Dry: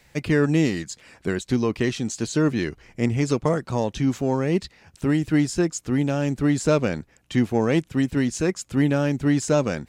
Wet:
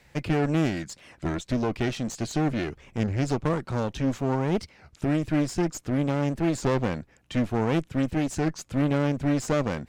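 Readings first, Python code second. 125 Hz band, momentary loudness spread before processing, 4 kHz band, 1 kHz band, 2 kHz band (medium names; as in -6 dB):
-3.0 dB, 7 LU, -4.0 dB, -0.5 dB, -4.5 dB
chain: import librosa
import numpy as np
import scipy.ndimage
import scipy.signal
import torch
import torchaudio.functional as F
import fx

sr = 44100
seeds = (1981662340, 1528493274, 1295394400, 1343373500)

y = fx.clip_asym(x, sr, top_db=-30.5, bottom_db=-13.5)
y = fx.high_shelf(y, sr, hz=4000.0, db=-6.5)
y = fx.record_warp(y, sr, rpm=33.33, depth_cents=250.0)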